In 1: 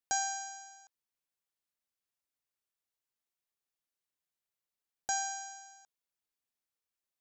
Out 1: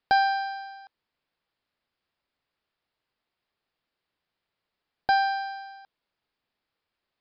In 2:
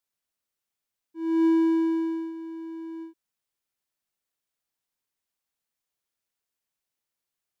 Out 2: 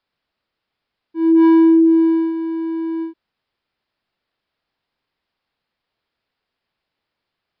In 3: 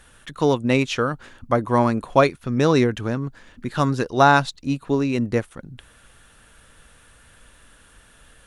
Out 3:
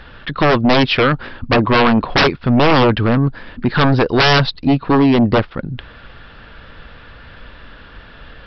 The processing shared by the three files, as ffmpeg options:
ffmpeg -i in.wav -af "highshelf=frequency=3500:gain=-7,aresample=11025,aeval=exprs='0.75*sin(PI/2*6.31*val(0)/0.75)':channel_layout=same,aresample=44100,volume=-5.5dB" out.wav

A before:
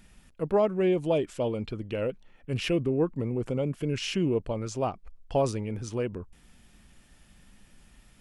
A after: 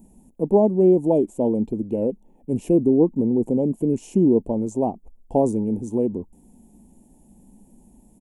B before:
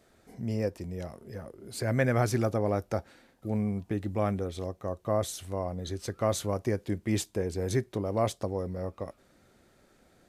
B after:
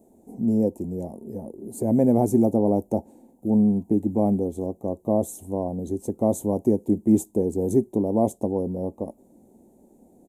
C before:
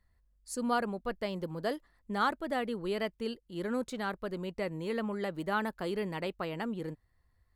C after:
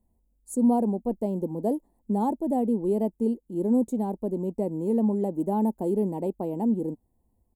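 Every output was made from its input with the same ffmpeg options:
ffmpeg -i in.wav -af "firequalizer=gain_entry='entry(130,0);entry(220,14);entry(380,9);entry(570,4);entry(890,6);entry(1300,-27);entry(2600,-18);entry(4800,-29);entry(6900,-9)':delay=0.05:min_phase=1,aexciter=amount=2.4:drive=7.6:freq=4100" out.wav

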